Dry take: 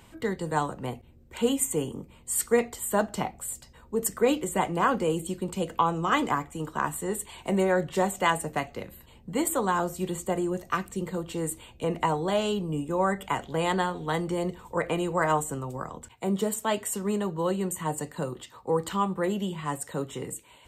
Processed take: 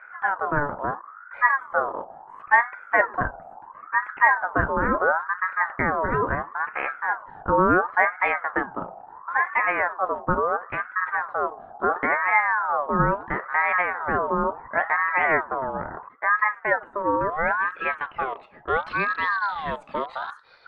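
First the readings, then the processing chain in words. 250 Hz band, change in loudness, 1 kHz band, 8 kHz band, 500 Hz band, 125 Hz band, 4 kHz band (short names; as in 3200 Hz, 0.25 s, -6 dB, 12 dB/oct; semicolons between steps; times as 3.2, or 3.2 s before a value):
-3.5 dB, +5.0 dB, +7.0 dB, under -40 dB, 0.0 dB, -2.5 dB, n/a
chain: rattling part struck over -41 dBFS, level -32 dBFS; tilt -3.5 dB/oct; low-pass sweep 700 Hz -> 2900 Hz, 16.95–19.06; ring modulator with a swept carrier 1100 Hz, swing 35%, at 0.73 Hz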